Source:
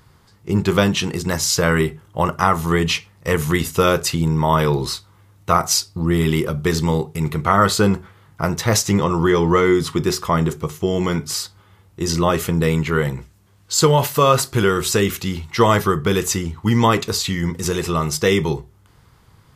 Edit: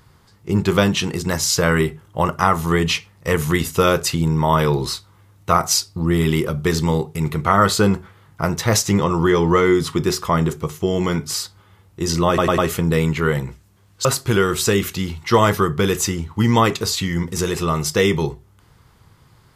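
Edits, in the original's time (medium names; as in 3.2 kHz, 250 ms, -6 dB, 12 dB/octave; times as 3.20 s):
12.28 s: stutter 0.10 s, 4 plays
13.75–14.32 s: delete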